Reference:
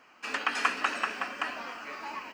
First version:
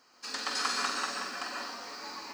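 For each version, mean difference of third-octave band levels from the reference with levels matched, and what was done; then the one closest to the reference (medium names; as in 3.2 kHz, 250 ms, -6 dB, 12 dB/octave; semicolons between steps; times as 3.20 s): 5.0 dB: resonant high shelf 3.4 kHz +8 dB, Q 3; band-stop 620 Hz, Q 15; flutter echo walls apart 7.9 m, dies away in 0.37 s; plate-style reverb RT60 0.62 s, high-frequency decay 0.8×, pre-delay 110 ms, DRR -0.5 dB; trim -6 dB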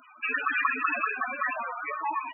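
15.0 dB: loudest bins only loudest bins 8; in parallel at -1.5 dB: compressor with a negative ratio -39 dBFS, ratio -0.5; on the sum: treble shelf 3.5 kHz +9.5 dB; trim +4.5 dB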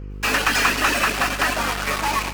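9.0 dB: reverb removal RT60 0.55 s; in parallel at -5.5 dB: fuzz box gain 51 dB, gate -42 dBFS; on the sum: mains buzz 50 Hz, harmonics 10, -33 dBFS -7 dB/octave; bit-crushed delay 105 ms, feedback 80%, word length 8-bit, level -15 dB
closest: first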